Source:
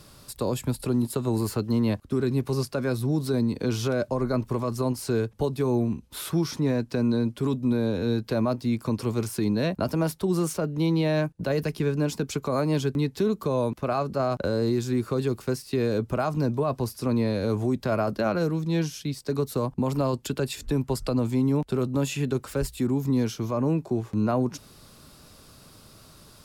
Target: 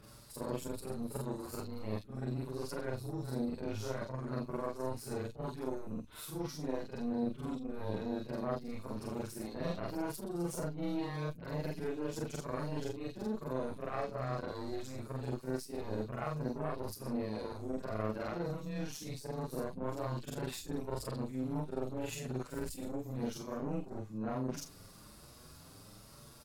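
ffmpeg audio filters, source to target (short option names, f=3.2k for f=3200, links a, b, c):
-filter_complex "[0:a]afftfilt=real='re':imag='-im':win_size=4096:overlap=0.75,areverse,acompressor=threshold=-41dB:ratio=5,areverse,aeval=exprs='0.0266*(cos(1*acos(clip(val(0)/0.0266,-1,1)))-cos(1*PI/2))+0.0133*(cos(2*acos(clip(val(0)/0.0266,-1,1)))-cos(2*PI/2))+0.00133*(cos(7*acos(clip(val(0)/0.0266,-1,1)))-cos(7*PI/2))':c=same,acrossover=split=3200[a][b];[b]adelay=50[c];[a][c]amix=inputs=2:normalize=0,asplit=2[d][e];[e]adelay=7.1,afreqshift=1[f];[d][f]amix=inputs=2:normalize=1,volume=6.5dB"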